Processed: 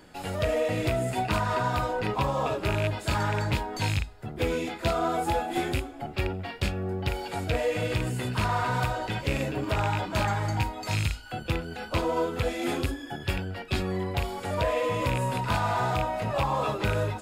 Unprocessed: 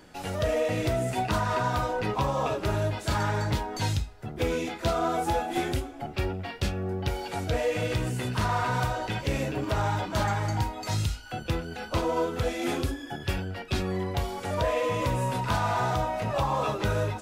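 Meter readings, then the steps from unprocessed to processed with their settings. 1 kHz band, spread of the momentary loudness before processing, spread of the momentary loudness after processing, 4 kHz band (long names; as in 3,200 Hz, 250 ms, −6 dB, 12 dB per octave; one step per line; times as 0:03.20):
0.0 dB, 5 LU, 5 LU, +0.5 dB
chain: loose part that buzzes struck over −25 dBFS, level −19 dBFS
notch filter 5,900 Hz, Q 7.7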